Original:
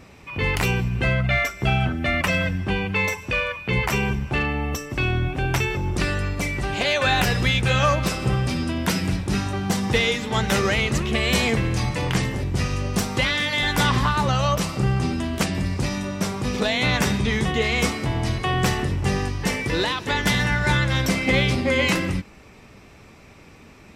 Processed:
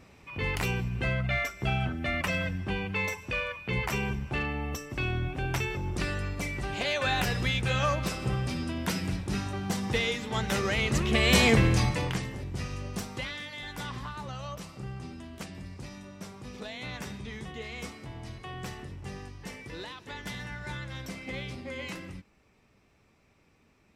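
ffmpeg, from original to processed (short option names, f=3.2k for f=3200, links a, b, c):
-af "volume=1dB,afade=t=in:st=10.67:d=0.95:silence=0.354813,afade=t=out:st=11.62:d=0.58:silence=0.237137,afade=t=out:st=12.88:d=0.66:silence=0.473151"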